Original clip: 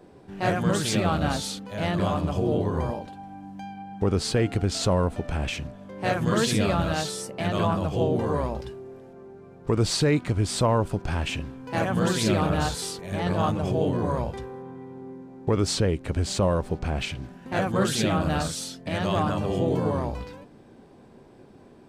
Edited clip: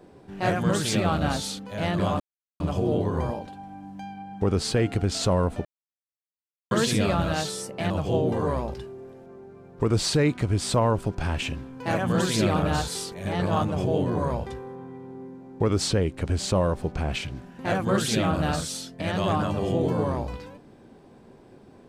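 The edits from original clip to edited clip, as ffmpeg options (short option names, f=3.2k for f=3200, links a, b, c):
-filter_complex "[0:a]asplit=5[a][b][c][d][e];[a]atrim=end=2.2,asetpts=PTS-STARTPTS,afade=t=out:st=2.196:d=0.004:c=hsin,apad=pad_dur=0.4[f];[b]atrim=start=2.2:end=5.25,asetpts=PTS-STARTPTS,afade=t=in:d=0.004:c=hsin,afade=t=out:st=3.046:d=0.004:c=hsin[g];[c]atrim=start=5.25:end=6.31,asetpts=PTS-STARTPTS,volume=0[h];[d]atrim=start=6.31:end=7.502,asetpts=PTS-STARTPTS,afade=t=in:d=0.004:c=hsin[i];[e]atrim=start=7.768[j];[f][g][h][i]concat=n=4:v=0:a=1[k];[k][j]acrossfade=d=0.004:c1=hsin:c2=hsin"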